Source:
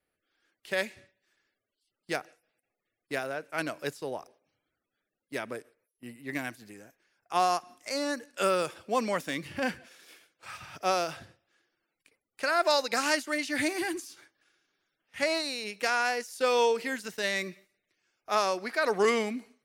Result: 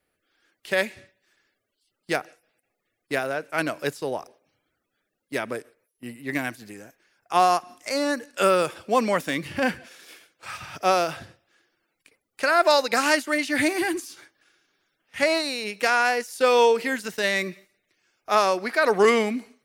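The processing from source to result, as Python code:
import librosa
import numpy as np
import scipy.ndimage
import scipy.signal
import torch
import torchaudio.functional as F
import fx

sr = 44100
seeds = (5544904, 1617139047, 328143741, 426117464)

y = fx.dynamic_eq(x, sr, hz=5800.0, q=1.0, threshold_db=-45.0, ratio=4.0, max_db=-4)
y = y * 10.0 ** (7.0 / 20.0)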